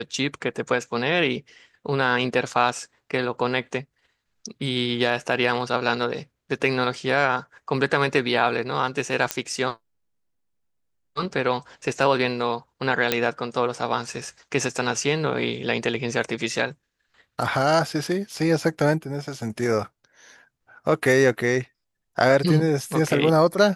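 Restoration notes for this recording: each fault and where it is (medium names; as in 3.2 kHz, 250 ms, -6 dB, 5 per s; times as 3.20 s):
9.31 s: pop -6 dBFS
13.12 s: pop -4 dBFS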